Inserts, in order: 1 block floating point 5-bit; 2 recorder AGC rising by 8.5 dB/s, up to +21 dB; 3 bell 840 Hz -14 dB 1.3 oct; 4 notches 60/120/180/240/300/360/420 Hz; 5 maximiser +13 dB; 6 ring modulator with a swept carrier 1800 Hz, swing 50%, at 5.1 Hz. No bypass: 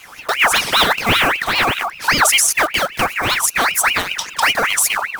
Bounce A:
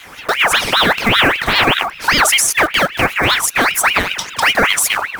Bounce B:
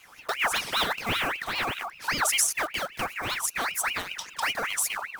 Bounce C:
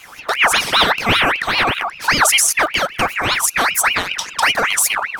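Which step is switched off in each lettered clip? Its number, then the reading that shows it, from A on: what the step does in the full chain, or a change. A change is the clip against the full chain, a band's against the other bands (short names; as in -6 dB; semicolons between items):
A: 3, 8 kHz band -3.0 dB; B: 5, crest factor change +5.0 dB; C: 1, distortion -23 dB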